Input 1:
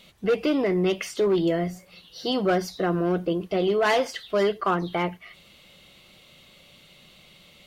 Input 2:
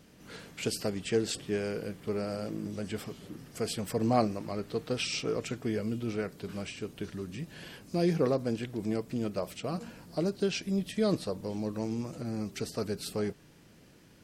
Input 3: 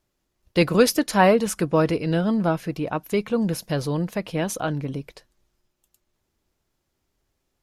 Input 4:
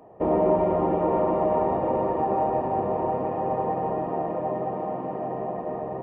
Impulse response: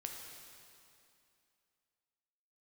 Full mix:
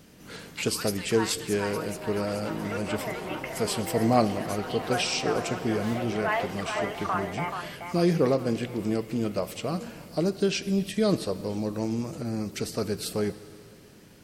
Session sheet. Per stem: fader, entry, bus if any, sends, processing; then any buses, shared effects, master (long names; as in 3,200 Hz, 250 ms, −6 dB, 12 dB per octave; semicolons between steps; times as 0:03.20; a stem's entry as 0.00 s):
−16.5 dB, 2.00 s, bus A, no send, echo send −3 dB, flat-topped bell 1,300 Hz +15.5 dB 2.5 octaves
+2.0 dB, 0.00 s, no bus, send −6 dB, no echo send, no processing
−12.5 dB, 0.00 s, no bus, no send, echo send −3 dB, Chebyshev high-pass filter 850 Hz, order 5
−4.0 dB, 1.50 s, bus A, no send, no echo send, compressor whose output falls as the input rises −27 dBFS
bus A: 0.0 dB, soft clipping −34 dBFS, distortion −6 dB; downward compressor, threshold −38 dBFS, peak gain reduction 3.5 dB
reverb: on, RT60 2.6 s, pre-delay 5 ms
echo: repeating echo 430 ms, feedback 46%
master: high-shelf EQ 9,200 Hz +4.5 dB